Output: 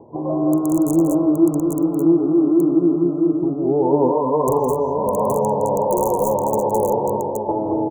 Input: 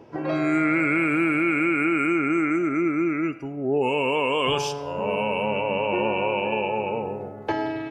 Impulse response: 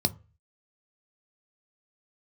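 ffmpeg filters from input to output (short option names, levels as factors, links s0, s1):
-af "lowpass=f=3700:w=0.5412,lowpass=f=3700:w=1.3066,aeval=exprs='(mod(4.22*val(0)+1,2)-1)/4.22':c=same,asuperstop=centerf=2700:order=20:qfactor=0.5,aecho=1:1:46|164|212|224|236|821:0.15|0.299|0.668|0.376|0.178|0.668,volume=1.5"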